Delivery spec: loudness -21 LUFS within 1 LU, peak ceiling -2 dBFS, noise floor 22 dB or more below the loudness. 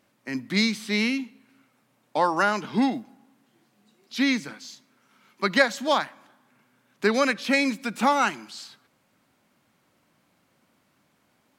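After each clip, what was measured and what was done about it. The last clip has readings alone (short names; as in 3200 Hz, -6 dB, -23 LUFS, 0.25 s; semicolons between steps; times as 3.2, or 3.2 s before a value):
loudness -24.5 LUFS; peak -4.0 dBFS; loudness target -21.0 LUFS
-> gain +3.5 dB; limiter -2 dBFS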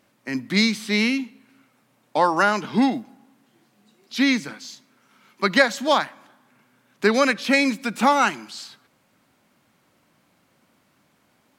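loudness -21.0 LUFS; peak -2.0 dBFS; noise floor -64 dBFS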